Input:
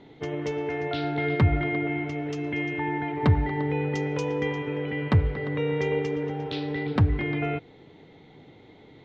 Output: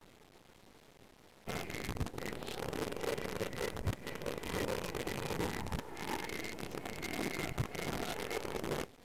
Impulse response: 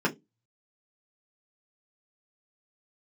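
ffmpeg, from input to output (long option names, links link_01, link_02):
-filter_complex "[0:a]areverse,acompressor=threshold=-27dB:ratio=12,asplit=2[link_01][link_02];[link_02]lowpass=frequency=1400:width_type=q:width=2.7[link_03];[1:a]atrim=start_sample=2205[link_04];[link_03][link_04]afir=irnorm=-1:irlink=0,volume=-32dB[link_05];[link_01][link_05]amix=inputs=2:normalize=0,flanger=delay=7.6:depth=8:regen=59:speed=0.3:shape=triangular,afftfilt=real='hypot(re,im)*cos(2*PI*random(0))':imag='hypot(re,im)*sin(2*PI*random(1))':win_size=512:overlap=0.75,acrusher=bits=7:dc=4:mix=0:aa=0.000001,volume=2.5dB" -ar 32000 -c:a libvorbis -b:a 128k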